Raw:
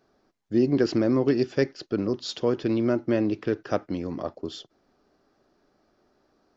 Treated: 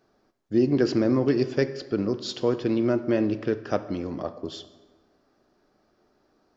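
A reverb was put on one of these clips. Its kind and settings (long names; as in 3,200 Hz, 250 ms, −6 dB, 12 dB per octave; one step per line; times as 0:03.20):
dense smooth reverb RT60 1.4 s, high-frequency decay 0.65×, DRR 11.5 dB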